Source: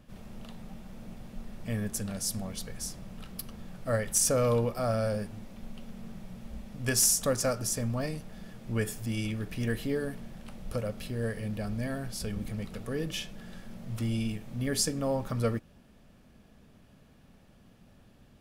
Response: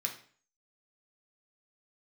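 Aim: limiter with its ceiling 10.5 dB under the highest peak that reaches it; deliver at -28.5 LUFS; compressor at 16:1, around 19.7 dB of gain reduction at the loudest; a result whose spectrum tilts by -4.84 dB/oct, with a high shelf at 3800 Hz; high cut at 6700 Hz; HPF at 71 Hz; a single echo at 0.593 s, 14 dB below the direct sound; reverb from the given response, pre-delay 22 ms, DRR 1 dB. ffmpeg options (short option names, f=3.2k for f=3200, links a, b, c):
-filter_complex "[0:a]highpass=71,lowpass=6.7k,highshelf=f=3.8k:g=8.5,acompressor=threshold=-39dB:ratio=16,alimiter=level_in=11dB:limit=-24dB:level=0:latency=1,volume=-11dB,aecho=1:1:593:0.2,asplit=2[a][b];[1:a]atrim=start_sample=2205,adelay=22[c];[b][c]afir=irnorm=-1:irlink=0,volume=-3dB[d];[a][d]amix=inputs=2:normalize=0,volume=13.5dB"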